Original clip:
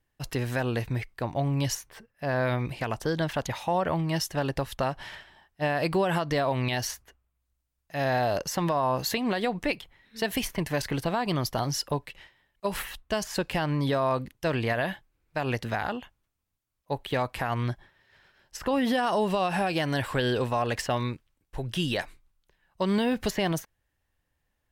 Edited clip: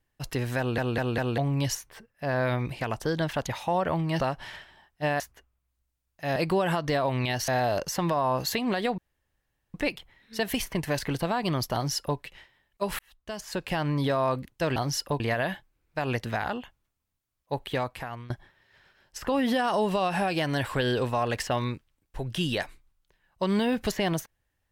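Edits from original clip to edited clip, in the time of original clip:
0.58 stutter in place 0.20 s, 4 plays
4.2–4.79 cut
5.79–6.91 move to 8.07
9.57 insert room tone 0.76 s
11.57–12.01 copy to 14.59
12.82–13.66 fade in
17.07–17.69 fade out, to -19.5 dB

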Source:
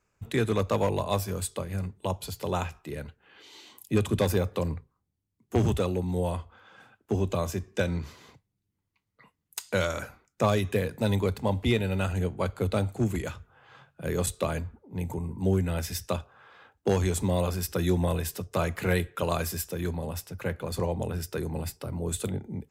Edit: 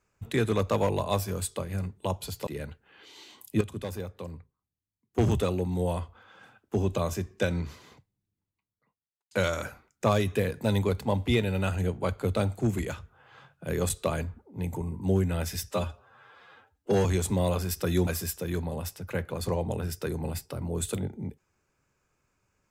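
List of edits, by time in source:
2.47–2.84 cut
3.98–5.55 gain -10.5 dB
8.05–9.68 studio fade out
16.07–16.97 stretch 1.5×
17.99–19.38 cut

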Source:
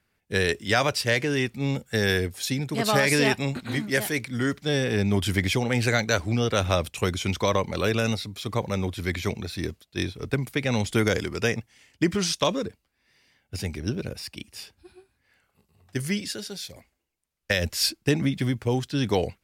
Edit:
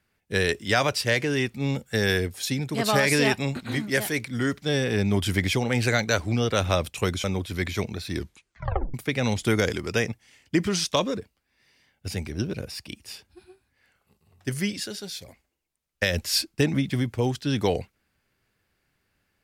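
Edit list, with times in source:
7.24–8.72 cut
9.62 tape stop 0.80 s

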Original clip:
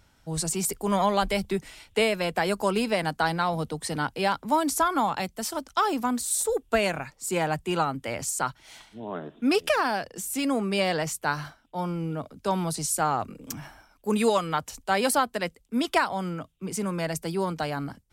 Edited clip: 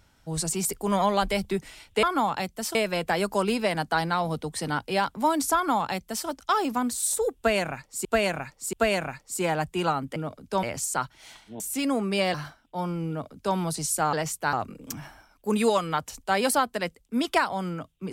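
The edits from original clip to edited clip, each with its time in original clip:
4.83–5.55 copy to 2.03
6.65–7.33 loop, 3 plays
9.05–10.2 cut
10.94–11.34 move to 13.13
12.09–12.56 copy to 8.08

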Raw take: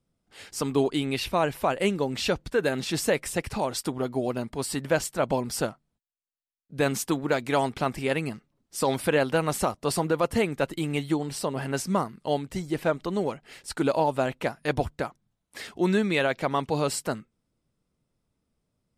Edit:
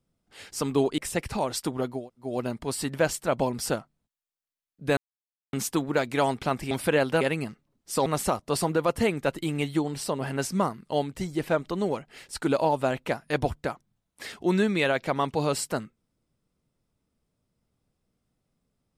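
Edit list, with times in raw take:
0.98–3.19 cut
4.19 insert room tone 0.30 s, crossfade 0.24 s
6.88 insert silence 0.56 s
8.91–9.41 move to 8.06

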